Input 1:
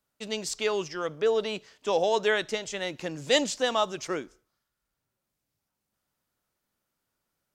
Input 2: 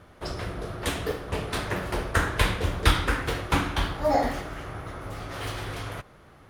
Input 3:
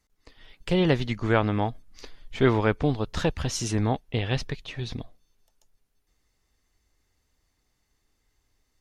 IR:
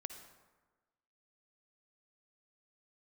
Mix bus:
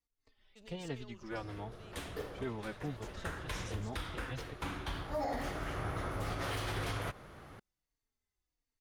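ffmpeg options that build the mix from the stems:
-filter_complex "[0:a]acompressor=threshold=0.0282:ratio=6,asoftclip=type=tanh:threshold=0.0335,adelay=350,volume=0.106[s0];[1:a]adelay=1100,volume=1[s1];[2:a]asplit=2[s2][s3];[s3]adelay=3.7,afreqshift=-1.4[s4];[s2][s4]amix=inputs=2:normalize=1,volume=0.168,asplit=2[s5][s6];[s6]apad=whole_len=334971[s7];[s1][s7]sidechaincompress=threshold=0.00158:ratio=8:attack=39:release=1260[s8];[s0][s8][s5]amix=inputs=3:normalize=0,alimiter=level_in=1.58:limit=0.0631:level=0:latency=1:release=71,volume=0.631"

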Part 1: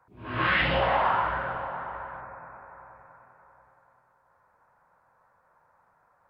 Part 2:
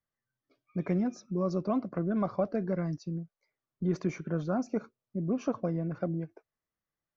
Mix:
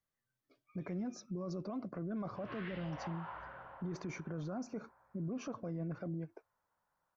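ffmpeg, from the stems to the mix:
-filter_complex "[0:a]adelay=2100,volume=0.106[s0];[1:a]alimiter=level_in=1.58:limit=0.0631:level=0:latency=1:release=17,volume=0.631,volume=0.944[s1];[s0][s1]amix=inputs=2:normalize=0,alimiter=level_in=2.99:limit=0.0631:level=0:latency=1:release=106,volume=0.335"

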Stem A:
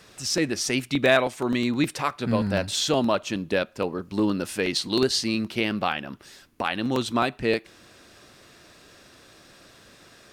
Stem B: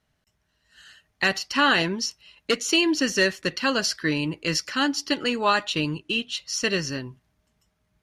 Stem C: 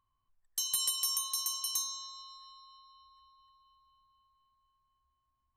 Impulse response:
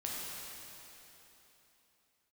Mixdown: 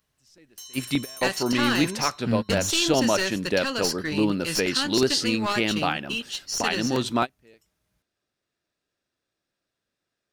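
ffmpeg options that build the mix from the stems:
-filter_complex "[0:a]bandreject=f=1100:w=14,volume=1.06[s0];[1:a]highshelf=f=5400:g=11.5,aeval=exprs='clip(val(0),-1,0.0944)':c=same,volume=0.531,asplit=2[s1][s2];[2:a]asoftclip=type=hard:threshold=0.0299,volume=0.473[s3];[s2]apad=whole_len=455268[s4];[s0][s4]sidechaingate=range=0.0251:threshold=0.00126:ratio=16:detection=peak[s5];[s5][s1][s3]amix=inputs=3:normalize=0"

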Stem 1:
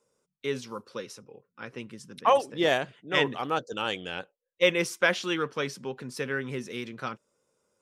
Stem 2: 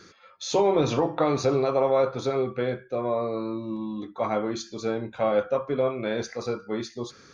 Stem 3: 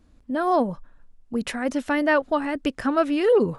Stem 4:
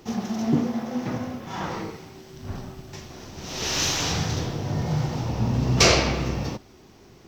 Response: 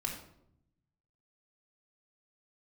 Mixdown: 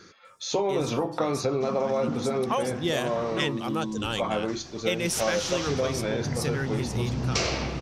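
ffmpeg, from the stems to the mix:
-filter_complex "[0:a]bass=f=250:g=12,treble=f=4000:g=13,adelay=250,volume=0.75[s0];[1:a]volume=1[s1];[3:a]lowpass=f=9400:w=0.5412,lowpass=f=9400:w=1.3066,adelay=1550,volume=0.531[s2];[s0][s1][s2]amix=inputs=3:normalize=0,acompressor=threshold=0.0794:ratio=6"

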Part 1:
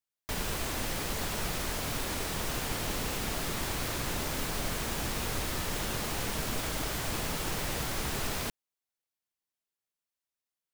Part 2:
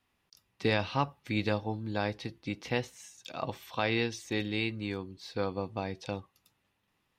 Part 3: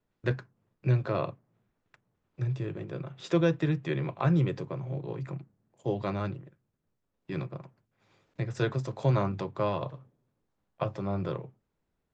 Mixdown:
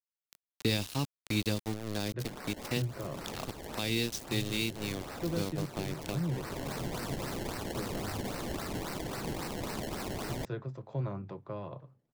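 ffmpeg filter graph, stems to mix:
-filter_complex "[0:a]highpass=f=170:w=0.5412,highpass=f=170:w=1.3066,highshelf=f=7200:g=9.5,acrusher=samples=25:mix=1:aa=0.000001:lfo=1:lforange=25:lforate=3.7,adelay=1950,volume=0.631[s0];[1:a]lowshelf=f=470:g=4.5,crystalizer=i=3.5:c=0,aeval=exprs='val(0)*gte(abs(val(0)),0.0335)':c=same,volume=0.75,asplit=2[s1][s2];[2:a]lowpass=f=1600:p=1,adelay=1900,volume=0.376[s3];[s2]apad=whole_len=559298[s4];[s0][s4]sidechaincompress=threshold=0.0158:ratio=12:attack=16:release=855[s5];[s5][s1][s3]amix=inputs=3:normalize=0,acrossover=split=400|3000[s6][s7][s8];[s7]acompressor=threshold=0.01:ratio=6[s9];[s6][s9][s8]amix=inputs=3:normalize=0"

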